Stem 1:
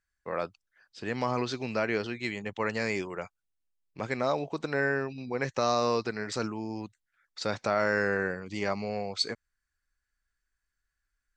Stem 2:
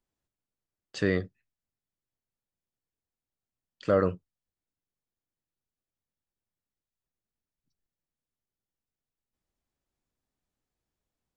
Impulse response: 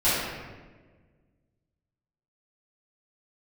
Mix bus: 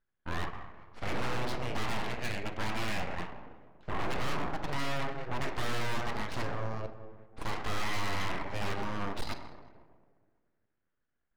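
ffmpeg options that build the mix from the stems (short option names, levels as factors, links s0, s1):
-filter_complex "[0:a]highpass=60,volume=1.26,asplit=2[s0][s1];[s1]volume=0.0794[s2];[1:a]highshelf=f=3900:g=-5.5,acompressor=threshold=0.0501:ratio=2.5,volume=0.376,asplit=2[s3][s4];[s4]volume=0.398[s5];[2:a]atrim=start_sample=2205[s6];[s2][s5]amix=inputs=2:normalize=0[s7];[s7][s6]afir=irnorm=-1:irlink=0[s8];[s0][s3][s8]amix=inputs=3:normalize=0,aeval=exprs='abs(val(0))':c=same,adynamicsmooth=sensitivity=7:basefreq=2100,asoftclip=type=hard:threshold=0.0562"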